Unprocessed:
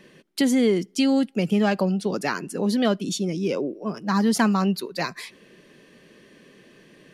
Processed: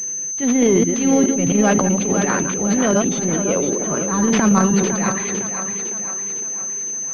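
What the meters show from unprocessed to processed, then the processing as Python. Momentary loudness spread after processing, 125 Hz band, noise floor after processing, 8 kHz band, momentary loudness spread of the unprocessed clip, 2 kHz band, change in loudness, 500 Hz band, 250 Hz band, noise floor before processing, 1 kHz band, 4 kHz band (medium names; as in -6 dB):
8 LU, +6.5 dB, -26 dBFS, +20.5 dB, 10 LU, +4.5 dB, +5.5 dB, +6.0 dB, +5.0 dB, -54 dBFS, +5.5 dB, -1.0 dB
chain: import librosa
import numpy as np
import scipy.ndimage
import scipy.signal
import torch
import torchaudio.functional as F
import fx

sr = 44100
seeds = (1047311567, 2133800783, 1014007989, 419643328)

y = fx.reverse_delay(x, sr, ms=105, wet_db=-9.0)
y = fx.transient(y, sr, attack_db=-12, sustain_db=10)
y = fx.echo_split(y, sr, split_hz=300.0, low_ms=312, high_ms=507, feedback_pct=52, wet_db=-8.0)
y = fx.pwm(y, sr, carrier_hz=6200.0)
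y = F.gain(torch.from_numpy(y), 4.0).numpy()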